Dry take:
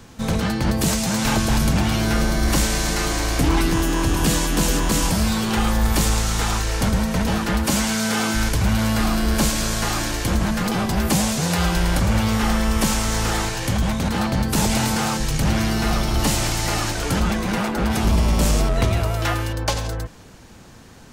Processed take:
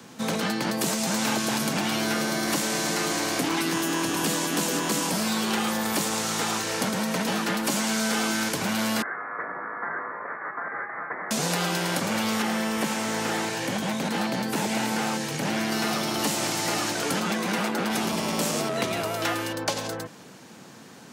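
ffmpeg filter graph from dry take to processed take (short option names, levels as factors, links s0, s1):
-filter_complex "[0:a]asettb=1/sr,asplit=3[s0][s1][s2];[s0]atrim=end=9.024[s3];[s1]atrim=start=9.02:end=11.31,asetpts=PTS-STARTPTS,afade=t=in:d=0.004:c=qsin,afade=t=out:st=2.286:d=0.004:c=qsin,highpass=f=1100:w=0.5412,highpass=f=1100:w=1.3066,lowpass=f=2400:t=q:w=0.5098,lowpass=f=2400:t=q:w=0.6013,lowpass=f=2400:t=q:w=0.9,lowpass=f=2400:t=q:w=2.563,afreqshift=-2800[s4];[s2]atrim=start=11.306[s5];[s3][s4]acrossfade=d=0.004:c1=hsin:c2=qsin[s6];[s6][s5]acrossfade=d=0.004:c1=qsin:c2=hsin,asettb=1/sr,asplit=3[s7][s8][s9];[s7]atrim=end=12.424[s10];[s8]atrim=start=12.42:end=15.72,asetpts=PTS-STARTPTS,afade=t=in:d=0.004:c=qsin,afade=t=out:st=3.296:d=0.004:c=qsin,equalizer=f=1200:t=o:w=0.38:g=-4.5,acrossover=split=2600[s11][s12];[s12]acompressor=threshold=0.0224:ratio=4:attack=1:release=60[s13];[s11][s13]amix=inputs=2:normalize=0[s14];[s9]atrim=start=15.716[s15];[s10][s14]acrossfade=d=0.004:c1=hsin:c2=qsin[s16];[s16][s15]acrossfade=d=0.004:c1=qsin:c2=hsin,highpass=f=150:w=0.5412,highpass=f=150:w=1.3066,acrossover=split=210|670|1500[s17][s18][s19][s20];[s17]acompressor=threshold=0.01:ratio=4[s21];[s18]acompressor=threshold=0.0398:ratio=4[s22];[s19]acompressor=threshold=0.02:ratio=4[s23];[s20]acompressor=threshold=0.0447:ratio=4[s24];[s21][s22][s23][s24]amix=inputs=4:normalize=0"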